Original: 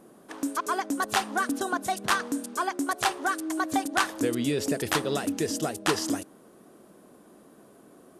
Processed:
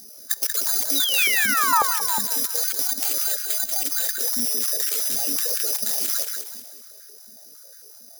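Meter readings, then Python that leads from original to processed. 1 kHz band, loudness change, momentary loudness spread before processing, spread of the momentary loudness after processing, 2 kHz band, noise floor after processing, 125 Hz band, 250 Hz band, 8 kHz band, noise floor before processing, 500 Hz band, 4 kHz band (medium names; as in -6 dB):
+0.5 dB, +8.0 dB, 5 LU, 7 LU, +3.5 dB, -46 dBFS, under -10 dB, -10.5 dB, +12.5 dB, -55 dBFS, -7.5 dB, +8.5 dB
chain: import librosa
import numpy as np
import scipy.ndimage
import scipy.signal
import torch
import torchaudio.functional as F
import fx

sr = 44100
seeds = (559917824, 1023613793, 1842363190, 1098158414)

p1 = fx.spec_ripple(x, sr, per_octave=0.74, drift_hz=2.7, depth_db=13)
p2 = fx.fixed_phaser(p1, sr, hz=1600.0, stages=8)
p3 = (np.kron(p2[::8], np.eye(8)[0]) * 8)[:len(p2)]
p4 = 10.0 ** (-10.0 / 20.0) * np.tanh(p3 / 10.0 ** (-10.0 / 20.0))
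p5 = p3 + (p4 * 10.0 ** (-4.0 / 20.0))
p6 = fx.high_shelf(p5, sr, hz=3900.0, db=9.0)
p7 = fx.level_steps(p6, sr, step_db=23)
p8 = fx.rev_schroeder(p7, sr, rt60_s=2.9, comb_ms=25, drr_db=16.5)
p9 = fx.rider(p8, sr, range_db=5, speed_s=2.0)
p10 = fx.peak_eq(p9, sr, hz=830.0, db=-8.0, octaves=1.2)
p11 = fx.spec_paint(p10, sr, seeds[0], shape='fall', start_s=0.95, length_s=0.88, low_hz=830.0, high_hz=4000.0, level_db=-24.0)
p12 = p11 + fx.echo_feedback(p11, sr, ms=186, feedback_pct=40, wet_db=-5.5, dry=0)
p13 = fx.filter_held_highpass(p12, sr, hz=11.0, low_hz=220.0, high_hz=1500.0)
y = p13 * 10.0 ** (-1.0 / 20.0)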